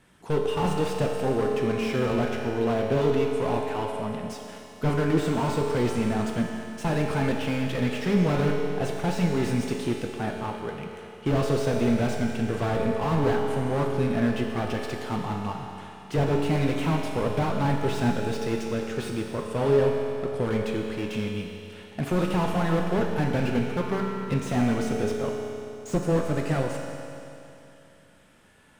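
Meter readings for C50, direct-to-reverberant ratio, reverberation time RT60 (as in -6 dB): 2.0 dB, 0.0 dB, 2.9 s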